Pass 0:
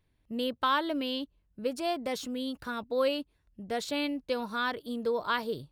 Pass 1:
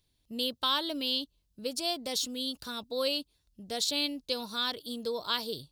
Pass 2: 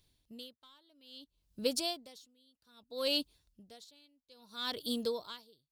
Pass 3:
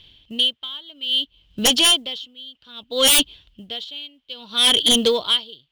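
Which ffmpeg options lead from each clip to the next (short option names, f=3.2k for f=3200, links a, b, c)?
-af "highshelf=f=2.8k:t=q:w=1.5:g=12,volume=-4dB"
-filter_complex "[0:a]asplit=2[a][b];[b]aeval=exprs='clip(val(0),-1,0.0531)':c=same,volume=-4dB[c];[a][c]amix=inputs=2:normalize=0,aeval=exprs='val(0)*pow(10,-37*(0.5-0.5*cos(2*PI*0.61*n/s))/20)':c=same,volume=-1dB"
-af "lowpass=f=3.1k:t=q:w=12,acrusher=bits=8:mode=log:mix=0:aa=0.000001,aeval=exprs='0.376*sin(PI/2*5.62*val(0)/0.376)':c=same,volume=-2dB"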